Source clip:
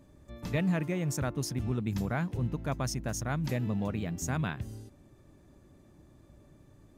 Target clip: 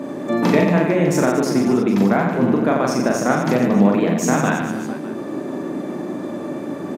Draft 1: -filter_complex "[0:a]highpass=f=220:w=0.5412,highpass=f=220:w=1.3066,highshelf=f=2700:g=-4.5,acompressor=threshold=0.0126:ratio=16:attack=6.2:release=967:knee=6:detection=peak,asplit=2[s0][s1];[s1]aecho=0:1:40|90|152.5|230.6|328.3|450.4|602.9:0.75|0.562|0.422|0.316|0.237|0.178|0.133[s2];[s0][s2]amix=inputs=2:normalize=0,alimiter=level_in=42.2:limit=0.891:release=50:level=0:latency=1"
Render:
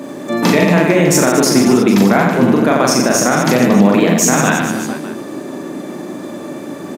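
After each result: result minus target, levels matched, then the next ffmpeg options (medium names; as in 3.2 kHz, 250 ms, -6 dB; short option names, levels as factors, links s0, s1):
4 kHz band +5.5 dB; compression: peak gain reduction -5.5 dB
-filter_complex "[0:a]highpass=f=220:w=0.5412,highpass=f=220:w=1.3066,highshelf=f=2700:g=-15.5,acompressor=threshold=0.0126:ratio=16:attack=6.2:release=967:knee=6:detection=peak,asplit=2[s0][s1];[s1]aecho=0:1:40|90|152.5|230.6|328.3|450.4|602.9:0.75|0.562|0.422|0.316|0.237|0.178|0.133[s2];[s0][s2]amix=inputs=2:normalize=0,alimiter=level_in=42.2:limit=0.891:release=50:level=0:latency=1"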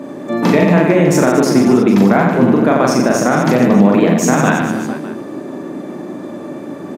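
compression: peak gain reduction -6.5 dB
-filter_complex "[0:a]highpass=f=220:w=0.5412,highpass=f=220:w=1.3066,highshelf=f=2700:g=-15.5,acompressor=threshold=0.00562:ratio=16:attack=6.2:release=967:knee=6:detection=peak,asplit=2[s0][s1];[s1]aecho=0:1:40|90|152.5|230.6|328.3|450.4|602.9:0.75|0.562|0.422|0.316|0.237|0.178|0.133[s2];[s0][s2]amix=inputs=2:normalize=0,alimiter=level_in=42.2:limit=0.891:release=50:level=0:latency=1"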